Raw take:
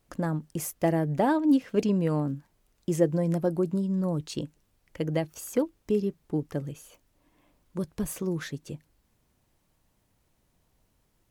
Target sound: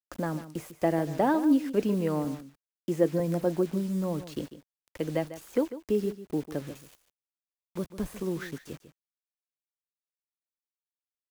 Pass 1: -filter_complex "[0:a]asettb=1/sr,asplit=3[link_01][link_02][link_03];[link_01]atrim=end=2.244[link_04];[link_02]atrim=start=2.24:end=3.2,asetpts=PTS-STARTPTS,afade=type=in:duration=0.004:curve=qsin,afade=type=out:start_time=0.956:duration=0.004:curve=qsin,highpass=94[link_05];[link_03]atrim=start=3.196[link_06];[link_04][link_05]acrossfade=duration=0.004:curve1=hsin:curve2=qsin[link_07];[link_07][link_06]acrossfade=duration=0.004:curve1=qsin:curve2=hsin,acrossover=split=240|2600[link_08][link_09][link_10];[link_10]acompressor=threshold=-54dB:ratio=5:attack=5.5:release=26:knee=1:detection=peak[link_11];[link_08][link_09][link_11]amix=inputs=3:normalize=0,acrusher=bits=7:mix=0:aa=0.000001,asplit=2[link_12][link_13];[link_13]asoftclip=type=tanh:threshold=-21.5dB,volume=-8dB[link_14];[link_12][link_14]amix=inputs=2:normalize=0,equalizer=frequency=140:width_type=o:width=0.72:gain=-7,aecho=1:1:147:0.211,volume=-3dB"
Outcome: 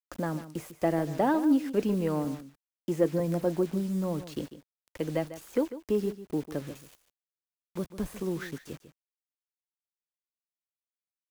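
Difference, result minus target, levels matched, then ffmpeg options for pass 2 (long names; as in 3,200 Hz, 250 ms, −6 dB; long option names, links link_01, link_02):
soft clipping: distortion +16 dB
-filter_complex "[0:a]asettb=1/sr,asplit=3[link_01][link_02][link_03];[link_01]atrim=end=2.244[link_04];[link_02]atrim=start=2.24:end=3.2,asetpts=PTS-STARTPTS,afade=type=in:duration=0.004:curve=qsin,afade=type=out:start_time=0.956:duration=0.004:curve=qsin,highpass=94[link_05];[link_03]atrim=start=3.196[link_06];[link_04][link_05]acrossfade=duration=0.004:curve1=hsin:curve2=qsin[link_07];[link_07][link_06]acrossfade=duration=0.004:curve1=qsin:curve2=hsin,acrossover=split=240|2600[link_08][link_09][link_10];[link_10]acompressor=threshold=-54dB:ratio=5:attack=5.5:release=26:knee=1:detection=peak[link_11];[link_08][link_09][link_11]amix=inputs=3:normalize=0,acrusher=bits=7:mix=0:aa=0.000001,asplit=2[link_12][link_13];[link_13]asoftclip=type=tanh:threshold=-10dB,volume=-8dB[link_14];[link_12][link_14]amix=inputs=2:normalize=0,equalizer=frequency=140:width_type=o:width=0.72:gain=-7,aecho=1:1:147:0.211,volume=-3dB"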